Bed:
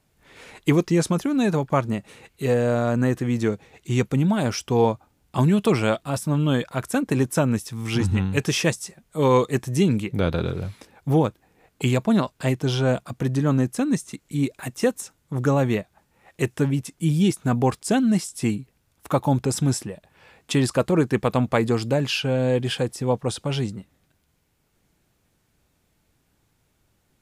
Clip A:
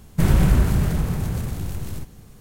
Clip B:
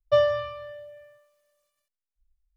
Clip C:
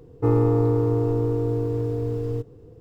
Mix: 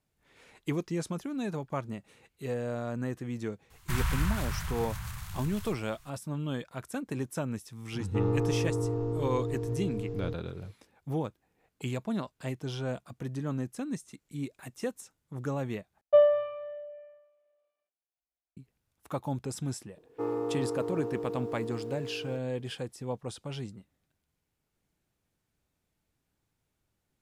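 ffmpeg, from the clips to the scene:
-filter_complex "[3:a]asplit=2[a][b];[0:a]volume=-13dB[c];[1:a]firequalizer=gain_entry='entry(110,0);entry(300,-24);entry(1000,10);entry(8400,7)':delay=0.05:min_phase=1[d];[a]aresample=16000,aresample=44100[e];[2:a]highpass=300,equalizer=f=340:t=q:w=4:g=8,equalizer=f=710:t=q:w=4:g=10,equalizer=f=1.1k:t=q:w=4:g=-6,equalizer=f=1.8k:t=q:w=4:g=-9,lowpass=f=2.4k:w=0.5412,lowpass=f=2.4k:w=1.3066[f];[b]highpass=340[g];[c]asplit=2[h][i];[h]atrim=end=16.014[j];[f]atrim=end=2.56,asetpts=PTS-STARTPTS,volume=-2.5dB[k];[i]atrim=start=18.566[l];[d]atrim=end=2.4,asetpts=PTS-STARTPTS,volume=-13dB,afade=t=in:d=0.004:c=hsin,afade=t=out:st=2.396:d=0.004:c=hsin,adelay=3700[m];[e]atrim=end=2.8,asetpts=PTS-STARTPTS,volume=-9dB,afade=t=in:d=0.004:c=hsin,afade=t=out:st=2.796:d=0.004:c=hsin,adelay=7920[n];[g]atrim=end=2.8,asetpts=PTS-STARTPTS,volume=-8.5dB,afade=t=in:d=0.004:c=hsin,afade=t=out:st=2.796:d=0.004:c=hsin,adelay=19960[o];[j][k]acrossfade=d=0.004:c1=hsin:c2=hsin[p];[p][l]acrossfade=d=0.004:c1=hsin:c2=hsin[q];[q][m][n][o]amix=inputs=4:normalize=0"

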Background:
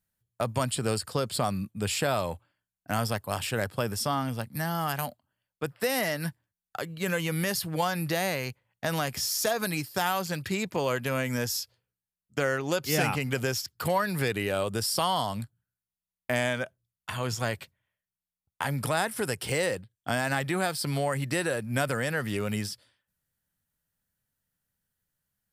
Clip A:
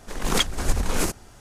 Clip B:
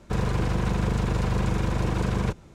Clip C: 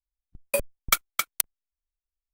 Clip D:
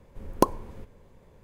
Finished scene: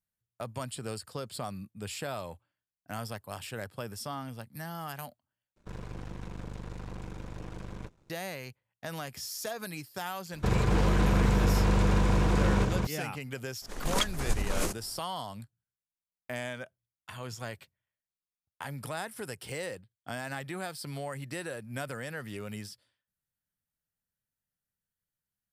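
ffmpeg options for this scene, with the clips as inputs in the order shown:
-filter_complex "[2:a]asplit=2[a][b];[0:a]volume=-9.5dB[c];[a]aeval=exprs='if(lt(val(0),0),0.251*val(0),val(0))':c=same[d];[b]aecho=1:1:262:0.708[e];[c]asplit=2[f][g];[f]atrim=end=5.564[h];[d]atrim=end=2.54,asetpts=PTS-STARTPTS,volume=-13.5dB[i];[g]atrim=start=8.096[j];[e]atrim=end=2.54,asetpts=PTS-STARTPTS,volume=-1dB,afade=t=in:d=0.004:c=hsin,afade=t=out:st=2.536:d=0.004:c=hsin,adelay=10330[k];[1:a]atrim=end=1.4,asetpts=PTS-STARTPTS,volume=-7dB,afade=t=in:d=0.02,afade=t=out:st=1.38:d=0.02,adelay=13610[l];[h][i]acrossfade=d=0.004:c1=hsin:c2=hsin[m];[m][j]acrossfade=d=0.004:c1=hsin:c2=hsin[n];[n][k][l]amix=inputs=3:normalize=0"

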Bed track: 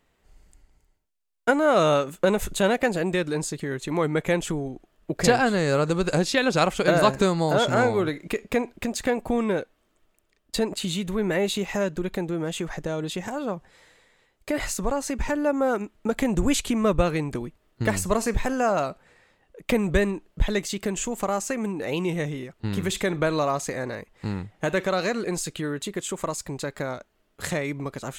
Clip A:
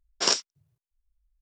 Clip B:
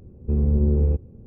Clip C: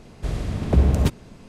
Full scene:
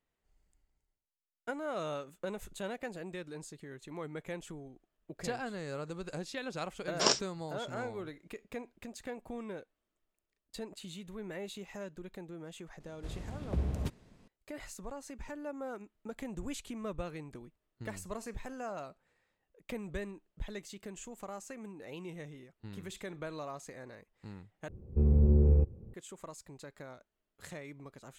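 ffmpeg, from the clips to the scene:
-filter_complex "[0:a]volume=-18dB[a];[1:a]tiltshelf=f=970:g=3.5[b];[2:a]equalizer=f=250:w=7.8:g=-9.5[c];[a]asplit=2[d][e];[d]atrim=end=24.684[f];[c]atrim=end=1.26,asetpts=PTS-STARTPTS,volume=-4.5dB[g];[e]atrim=start=25.936[h];[b]atrim=end=1.41,asetpts=PTS-STARTPTS,volume=-2.5dB,afade=t=in:d=0.004:c=hsin,afade=t=out:st=1.406:d=0.004:c=hsin,adelay=6790[i];[3:a]atrim=end=1.48,asetpts=PTS-STARTPTS,volume=-16dB,afade=t=in:d=0.004:c=hsin,afade=t=out:st=1.476:d=0.004:c=hsin,adelay=12800[j];[f][g]acrossfade=d=0.004:c1=hsin:c2=hsin[k];[k][h]acrossfade=d=0.004:c1=hsin:c2=hsin[l];[l][i][j]amix=inputs=3:normalize=0"

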